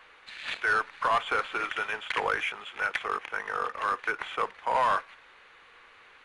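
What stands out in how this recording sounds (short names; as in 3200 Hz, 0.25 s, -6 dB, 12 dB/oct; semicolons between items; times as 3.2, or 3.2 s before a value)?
noise floor -56 dBFS; spectral tilt +1.0 dB/oct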